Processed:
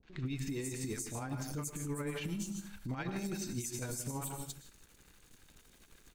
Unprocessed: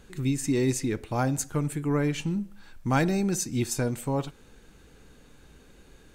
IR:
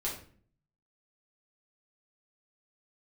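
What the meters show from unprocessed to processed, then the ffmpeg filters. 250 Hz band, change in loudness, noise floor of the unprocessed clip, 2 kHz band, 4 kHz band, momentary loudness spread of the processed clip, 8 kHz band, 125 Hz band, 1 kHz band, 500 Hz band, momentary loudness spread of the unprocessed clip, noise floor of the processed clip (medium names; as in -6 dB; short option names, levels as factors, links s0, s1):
-12.5 dB, -12.0 dB, -55 dBFS, -10.5 dB, -8.0 dB, 5 LU, -7.5 dB, -11.5 dB, -13.5 dB, -13.5 dB, 6 LU, -64 dBFS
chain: -filter_complex "[0:a]highshelf=f=2300:g=11,bandreject=f=80.39:t=h:w=4,bandreject=f=160.78:t=h:w=4,bandreject=f=241.17:t=h:w=4,bandreject=f=321.56:t=h:w=4,bandreject=f=401.95:t=h:w=4,bandreject=f=482.34:t=h:w=4,bandreject=f=562.73:t=h:w=4,bandreject=f=643.12:t=h:w=4,bandreject=f=723.51:t=h:w=4,aeval=exprs='sgn(val(0))*max(abs(val(0))-0.00299,0)':c=same,acrossover=split=570|4300[s0][s1][s2];[s1]adelay=30[s3];[s2]adelay=260[s4];[s0][s3][s4]amix=inputs=3:normalize=0,asplit=2[s5][s6];[1:a]atrim=start_sample=2205,afade=t=out:st=0.34:d=0.01,atrim=end_sample=15435,adelay=111[s7];[s6][s7]afir=irnorm=-1:irlink=0,volume=0.224[s8];[s5][s8]amix=inputs=2:normalize=0,acompressor=threshold=0.0251:ratio=3,adynamicequalizer=threshold=0.00316:dfrequency=3800:dqfactor=0.72:tfrequency=3800:tqfactor=0.72:attack=5:release=100:ratio=0.375:range=2:mode=cutabove:tftype=bell,alimiter=level_in=1.78:limit=0.0631:level=0:latency=1:release=21,volume=0.562,tremolo=f=12:d=0.43"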